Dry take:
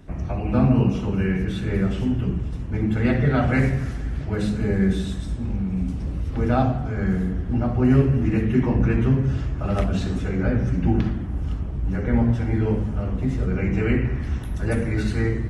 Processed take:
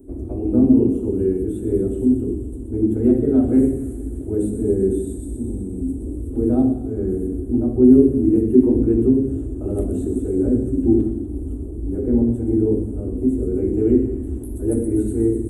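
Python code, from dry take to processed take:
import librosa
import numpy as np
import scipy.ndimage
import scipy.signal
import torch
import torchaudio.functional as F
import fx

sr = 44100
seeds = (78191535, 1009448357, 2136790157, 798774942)

p1 = fx.curve_eq(x, sr, hz=(110.0, 160.0, 260.0, 380.0, 550.0, 1100.0, 2200.0, 3600.0, 5200.0, 8400.0), db=(0, -15, 12, 14, -1, -16, -25, -19, -28, 10))
p2 = p1 + fx.echo_wet_highpass(p1, sr, ms=124, feedback_pct=73, hz=4400.0, wet_db=-6, dry=0)
y = p2 * librosa.db_to_amplitude(-2.5)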